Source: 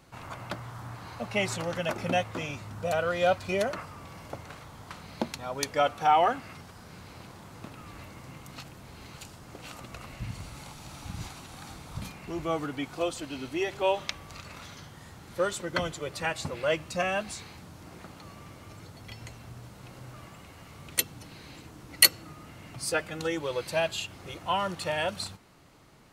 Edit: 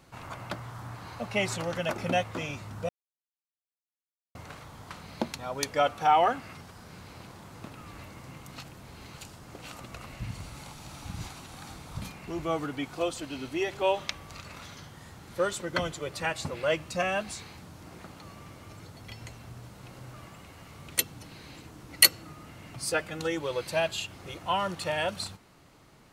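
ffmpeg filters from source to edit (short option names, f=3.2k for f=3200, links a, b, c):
-filter_complex "[0:a]asplit=3[a][b][c];[a]atrim=end=2.89,asetpts=PTS-STARTPTS,afade=t=out:st=2.886:d=0.004:c=hsin[d];[b]atrim=start=2.89:end=4.35,asetpts=PTS-STARTPTS,volume=0[e];[c]atrim=start=4.35,asetpts=PTS-STARTPTS,afade=t=in:d=0.004:c=hsin[f];[d][e][f]concat=n=3:v=0:a=1"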